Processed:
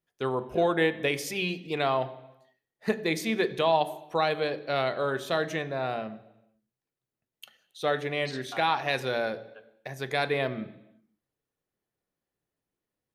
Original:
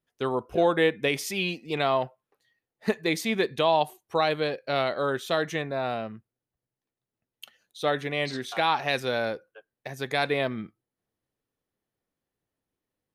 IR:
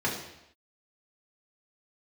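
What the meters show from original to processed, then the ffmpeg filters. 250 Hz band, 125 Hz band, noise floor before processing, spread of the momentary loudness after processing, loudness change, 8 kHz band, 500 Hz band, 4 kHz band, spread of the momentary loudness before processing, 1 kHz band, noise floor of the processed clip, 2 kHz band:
−1.5 dB, −0.5 dB, below −85 dBFS, 11 LU, −1.5 dB, −2.5 dB, −1.5 dB, −2.5 dB, 11 LU, −1.5 dB, below −85 dBFS, −1.5 dB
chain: -filter_complex "[0:a]asplit=2[link_01][link_02];[1:a]atrim=start_sample=2205,asetrate=39249,aresample=44100[link_03];[link_02][link_03]afir=irnorm=-1:irlink=0,volume=-19.5dB[link_04];[link_01][link_04]amix=inputs=2:normalize=0,volume=-3dB"

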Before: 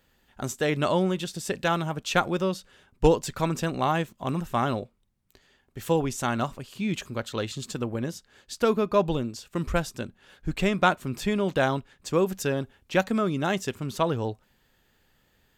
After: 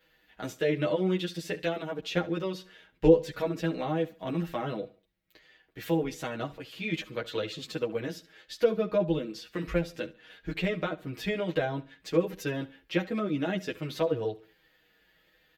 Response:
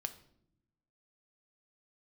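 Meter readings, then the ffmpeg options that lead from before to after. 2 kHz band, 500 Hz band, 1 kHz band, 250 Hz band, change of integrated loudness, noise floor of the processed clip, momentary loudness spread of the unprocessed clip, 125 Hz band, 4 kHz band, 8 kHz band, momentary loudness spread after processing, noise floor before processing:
−5.5 dB, −2.0 dB, −10.5 dB, −3.0 dB, −3.5 dB, −68 dBFS, 11 LU, −5.0 dB, −4.0 dB, −11.5 dB, 11 LU, −67 dBFS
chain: -filter_complex "[0:a]highpass=45,aecho=1:1:6.3:0.68,acrossover=split=560[link_01][link_02];[link_02]acompressor=threshold=-35dB:ratio=5[link_03];[link_01][link_03]amix=inputs=2:normalize=0,equalizer=frequency=125:width_type=o:width=1:gain=-9,equalizer=frequency=500:width_type=o:width=1:gain=4,equalizer=frequency=1000:width_type=o:width=1:gain=-4,equalizer=frequency=2000:width_type=o:width=1:gain=7,equalizer=frequency=4000:width_type=o:width=1:gain=4,equalizer=frequency=8000:width_type=o:width=1:gain=-10,asplit=2[link_04][link_05];[link_05]aecho=0:1:70|140|210:0.112|0.0404|0.0145[link_06];[link_04][link_06]amix=inputs=2:normalize=0,asplit=2[link_07][link_08];[link_08]adelay=9.6,afreqshift=-1.3[link_09];[link_07][link_09]amix=inputs=2:normalize=1"

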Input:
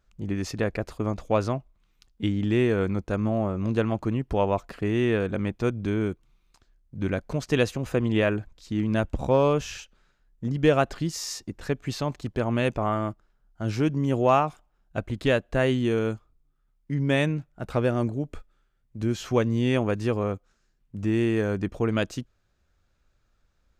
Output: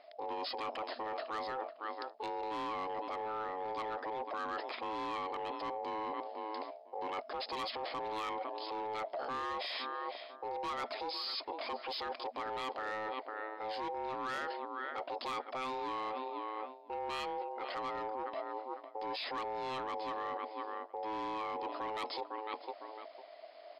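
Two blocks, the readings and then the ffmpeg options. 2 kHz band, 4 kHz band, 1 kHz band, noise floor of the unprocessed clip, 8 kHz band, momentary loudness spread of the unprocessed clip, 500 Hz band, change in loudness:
−10.5 dB, −4.5 dB, −3.5 dB, −69 dBFS, below −20 dB, 10 LU, −14.5 dB, −13.0 dB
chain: -filter_complex "[0:a]asplit=2[link_01][link_02];[link_02]adelay=504,lowpass=frequency=2000:poles=1,volume=-21dB,asplit=2[link_03][link_04];[link_04]adelay=504,lowpass=frequency=2000:poles=1,volume=0.16[link_05];[link_01][link_03][link_05]amix=inputs=3:normalize=0,asplit=2[link_06][link_07];[link_07]asoftclip=type=hard:threshold=-23.5dB,volume=-9dB[link_08];[link_06][link_08]amix=inputs=2:normalize=0,aeval=exprs='val(0)*sin(2*PI*650*n/s)':channel_layout=same,aemphasis=mode=production:type=bsi,afftfilt=real='re*between(b*sr/4096,240,5200)':imag='im*between(b*sr/4096,240,5200)':win_size=4096:overlap=0.75,asoftclip=type=tanh:threshold=-21.5dB,alimiter=level_in=9.5dB:limit=-24dB:level=0:latency=1:release=19,volume=-9.5dB,areverse,acompressor=threshold=-53dB:ratio=5,areverse,volume=14.5dB"

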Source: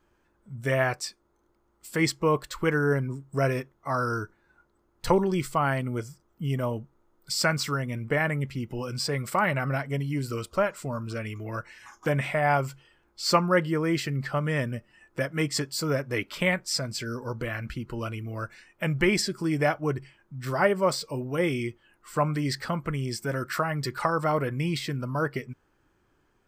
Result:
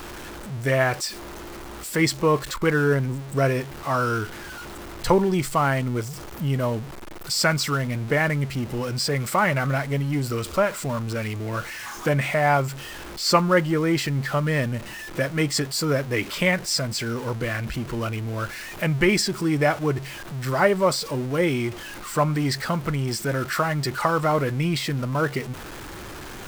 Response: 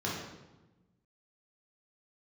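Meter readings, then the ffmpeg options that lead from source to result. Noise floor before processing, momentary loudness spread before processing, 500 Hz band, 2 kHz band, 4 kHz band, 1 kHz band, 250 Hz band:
−69 dBFS, 11 LU, +4.0 dB, +4.0 dB, +5.0 dB, +4.0 dB, +4.5 dB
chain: -af "aeval=exprs='val(0)+0.5*0.0188*sgn(val(0))':channel_layout=same,volume=3dB"

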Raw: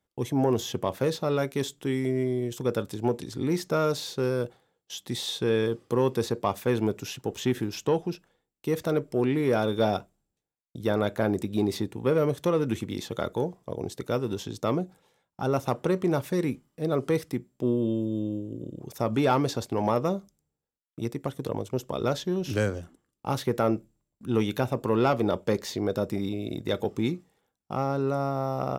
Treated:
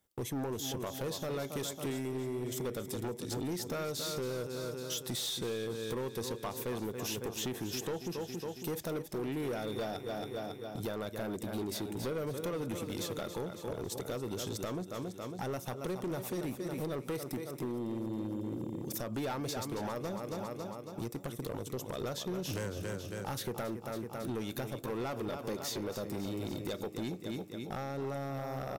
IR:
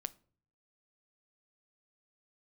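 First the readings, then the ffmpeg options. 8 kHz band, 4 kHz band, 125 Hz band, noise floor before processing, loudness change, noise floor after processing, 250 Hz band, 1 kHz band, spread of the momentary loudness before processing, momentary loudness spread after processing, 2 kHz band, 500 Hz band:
0.0 dB, −4.0 dB, −9.5 dB, −85 dBFS, −10.0 dB, −47 dBFS, −10.0 dB, −10.5 dB, 9 LU, 4 LU, −8.0 dB, −10.5 dB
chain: -af "crystalizer=i=1.5:c=0,aecho=1:1:276|552|828|1104|1380|1656:0.282|0.158|0.0884|0.0495|0.0277|0.0155,acompressor=threshold=-32dB:ratio=6,volume=32dB,asoftclip=hard,volume=-32dB"

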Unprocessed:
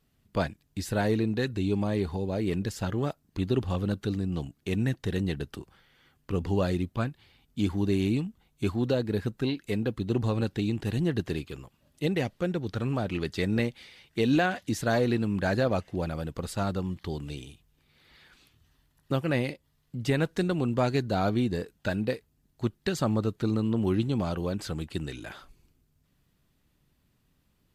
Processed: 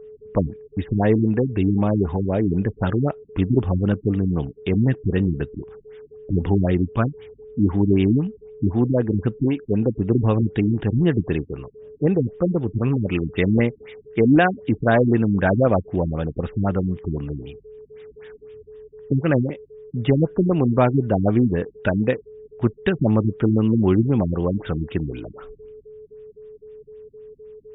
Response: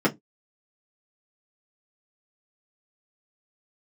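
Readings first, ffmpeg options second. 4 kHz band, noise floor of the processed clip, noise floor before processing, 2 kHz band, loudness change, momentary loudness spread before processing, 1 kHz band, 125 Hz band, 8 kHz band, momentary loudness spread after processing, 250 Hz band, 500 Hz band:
−2.5 dB, −52 dBFS, −71 dBFS, +5.5 dB, +8.5 dB, 9 LU, +6.5 dB, +9.0 dB, below −35 dB, 10 LU, +9.0 dB, +8.0 dB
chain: -af "aeval=exprs='val(0)+0.00447*sin(2*PI*430*n/s)':channel_layout=same,afftfilt=real='re*lt(b*sr/1024,320*pow(3800/320,0.5+0.5*sin(2*PI*3.9*pts/sr)))':imag='im*lt(b*sr/1024,320*pow(3800/320,0.5+0.5*sin(2*PI*3.9*pts/sr)))':win_size=1024:overlap=0.75,volume=9dB"

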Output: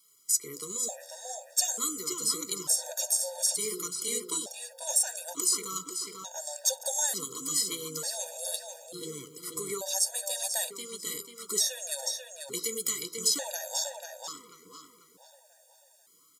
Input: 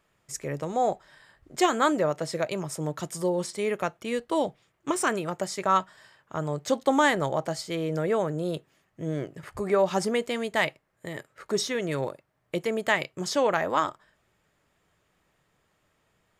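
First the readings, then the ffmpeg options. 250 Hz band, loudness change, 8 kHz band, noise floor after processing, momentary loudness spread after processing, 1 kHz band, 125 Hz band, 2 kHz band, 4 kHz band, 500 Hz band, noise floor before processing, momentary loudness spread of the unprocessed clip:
−15.0 dB, −2.0 dB, +12.5 dB, −62 dBFS, 13 LU, −15.5 dB, −18.5 dB, −14.5 dB, +3.0 dB, −13.0 dB, −72 dBFS, 13 LU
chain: -filter_complex "[0:a]highpass=60,bass=frequency=250:gain=-13,treble=frequency=4000:gain=11,bandreject=frequency=82.83:width_type=h:width=4,bandreject=frequency=165.66:width_type=h:width=4,bandreject=frequency=248.49:width_type=h:width=4,bandreject=frequency=331.32:width_type=h:width=4,bandreject=frequency=414.15:width_type=h:width=4,bandreject=frequency=496.98:width_type=h:width=4,bandreject=frequency=579.81:width_type=h:width=4,bandreject=frequency=662.64:width_type=h:width=4,bandreject=frequency=745.47:width_type=h:width=4,bandreject=frequency=828.3:width_type=h:width=4,bandreject=frequency=911.13:width_type=h:width=4,bandreject=frequency=993.96:width_type=h:width=4,bandreject=frequency=1076.79:width_type=h:width=4,bandreject=frequency=1159.62:width_type=h:width=4,bandreject=frequency=1242.45:width_type=h:width=4,bandreject=frequency=1325.28:width_type=h:width=4,bandreject=frequency=1408.11:width_type=h:width=4,bandreject=frequency=1490.94:width_type=h:width=4,bandreject=frequency=1573.77:width_type=h:width=4,acrossover=split=330|3700|7900[link_01][link_02][link_03][link_04];[link_01]acompressor=threshold=-39dB:ratio=4[link_05];[link_02]acompressor=threshold=-35dB:ratio=4[link_06];[link_03]acompressor=threshold=-40dB:ratio=4[link_07];[link_04]acompressor=threshold=-38dB:ratio=4[link_08];[link_05][link_06][link_07][link_08]amix=inputs=4:normalize=0,flanger=delay=1.2:depth=9.6:regen=-38:speed=0.76:shape=sinusoidal,aexciter=amount=4.4:drive=6.1:freq=3600,asplit=2[link_09][link_10];[link_10]adelay=491,lowpass=frequency=4800:poles=1,volume=-4dB,asplit=2[link_11][link_12];[link_12]adelay=491,lowpass=frequency=4800:poles=1,volume=0.46,asplit=2[link_13][link_14];[link_14]adelay=491,lowpass=frequency=4800:poles=1,volume=0.46,asplit=2[link_15][link_16];[link_16]adelay=491,lowpass=frequency=4800:poles=1,volume=0.46,asplit=2[link_17][link_18];[link_18]adelay=491,lowpass=frequency=4800:poles=1,volume=0.46,asplit=2[link_19][link_20];[link_20]adelay=491,lowpass=frequency=4800:poles=1,volume=0.46[link_21];[link_11][link_13][link_15][link_17][link_19][link_21]amix=inputs=6:normalize=0[link_22];[link_09][link_22]amix=inputs=2:normalize=0,afftfilt=real='re*gt(sin(2*PI*0.56*pts/sr)*(1-2*mod(floor(b*sr/1024/480),2)),0)':imag='im*gt(sin(2*PI*0.56*pts/sr)*(1-2*mod(floor(b*sr/1024/480),2)),0)':win_size=1024:overlap=0.75"

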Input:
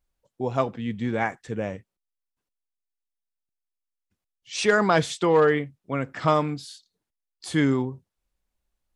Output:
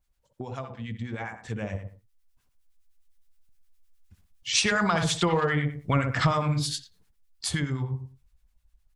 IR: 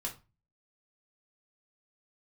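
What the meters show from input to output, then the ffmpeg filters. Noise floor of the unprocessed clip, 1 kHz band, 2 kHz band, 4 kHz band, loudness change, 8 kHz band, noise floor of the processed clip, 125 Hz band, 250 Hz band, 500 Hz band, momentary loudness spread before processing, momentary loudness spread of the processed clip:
−85 dBFS, −3.5 dB, −1.5 dB, +5.0 dB, −3.0 dB, +6.0 dB, −70 dBFS, +3.0 dB, −4.0 dB, −8.0 dB, 14 LU, 15 LU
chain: -filter_complex "[0:a]alimiter=limit=-12dB:level=0:latency=1:release=427,equalizer=frequency=410:width_type=o:width=2.1:gain=-6.5,asplit=2[link_01][link_02];[link_02]adelay=61,lowpass=frequency=1900:poles=1,volume=-6dB,asplit=2[link_03][link_04];[link_04]adelay=61,lowpass=frequency=1900:poles=1,volume=0.34,asplit=2[link_05][link_06];[link_06]adelay=61,lowpass=frequency=1900:poles=1,volume=0.34,asplit=2[link_07][link_08];[link_08]adelay=61,lowpass=frequency=1900:poles=1,volume=0.34[link_09];[link_03][link_05][link_07][link_09]amix=inputs=4:normalize=0[link_10];[link_01][link_10]amix=inputs=2:normalize=0,acrossover=split=980[link_11][link_12];[link_11]aeval=exprs='val(0)*(1-0.7/2+0.7/2*cos(2*PI*9.7*n/s))':channel_layout=same[link_13];[link_12]aeval=exprs='val(0)*(1-0.7/2-0.7/2*cos(2*PI*9.7*n/s))':channel_layout=same[link_14];[link_13][link_14]amix=inputs=2:normalize=0,acompressor=threshold=-41dB:ratio=4,asubboost=boost=3:cutoff=150,dynaudnorm=framelen=210:gausssize=21:maxgain=11.5dB,volume=6.5dB"

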